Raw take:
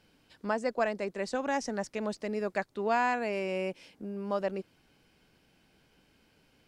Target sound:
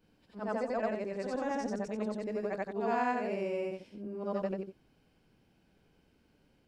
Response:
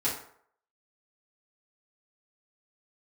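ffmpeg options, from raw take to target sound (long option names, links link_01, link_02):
-af "afftfilt=real='re':imag='-im':win_size=8192:overlap=0.75,tiltshelf=frequency=940:gain=4.5"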